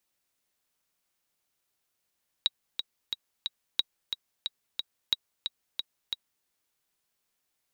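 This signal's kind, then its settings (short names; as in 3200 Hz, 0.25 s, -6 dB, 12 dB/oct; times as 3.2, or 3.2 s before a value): metronome 180 bpm, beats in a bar 4, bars 3, 3830 Hz, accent 7 dB -10.5 dBFS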